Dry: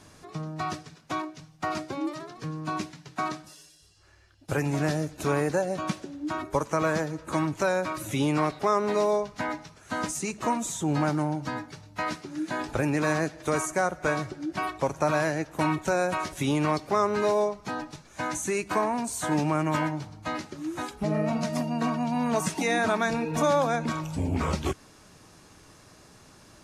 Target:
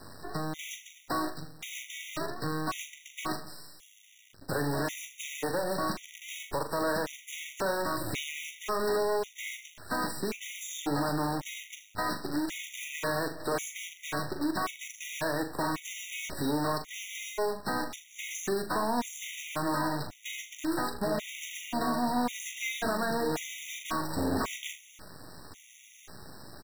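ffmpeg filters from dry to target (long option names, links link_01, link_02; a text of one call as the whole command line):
ffmpeg -i in.wav -filter_complex "[0:a]acrossover=split=290|4400[link_01][link_02][link_03];[link_01]acompressor=threshold=-44dB:ratio=4[link_04];[link_02]acompressor=threshold=-33dB:ratio=4[link_05];[link_03]acompressor=threshold=-48dB:ratio=4[link_06];[link_04][link_05][link_06]amix=inputs=3:normalize=0,acrusher=bits=7:dc=4:mix=0:aa=0.000001,volume=34.5dB,asoftclip=hard,volume=-34.5dB,aecho=1:1:41|79:0.398|0.188,afftfilt=real='re*gt(sin(2*PI*0.92*pts/sr)*(1-2*mod(floor(b*sr/1024/1900),2)),0)':imag='im*gt(sin(2*PI*0.92*pts/sr)*(1-2*mod(floor(b*sr/1024/1900),2)),0)':win_size=1024:overlap=0.75,volume=8dB" out.wav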